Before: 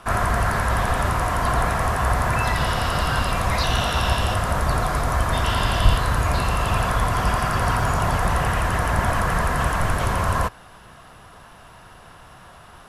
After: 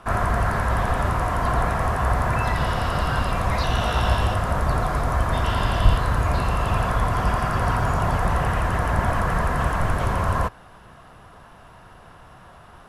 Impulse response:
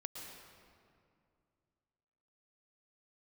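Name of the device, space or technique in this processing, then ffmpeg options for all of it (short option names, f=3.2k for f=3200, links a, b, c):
behind a face mask: -filter_complex "[0:a]highshelf=f=2.3k:g=-8,asettb=1/sr,asplit=3[a][b][c];[a]atrim=end=3.804[d];[b]atrim=start=3.8:end=4.28,asetpts=PTS-STARTPTS,afade=t=in:d=0.004:c=qsin,afade=t=out:st=0.476:d=0.004:c=qsin,asplit=2[e][f];[f]adelay=18,volume=-5.5dB[g];[e][g]amix=inputs=2:normalize=0,atrim=end_sample=21168[h];[c]atrim=start=4.276[i];[d][h]acrossfade=d=0.004:c1=hsin:c2=qsin[j];[j][i]acrossfade=d=0.004:c1=qsin:c2=hsin"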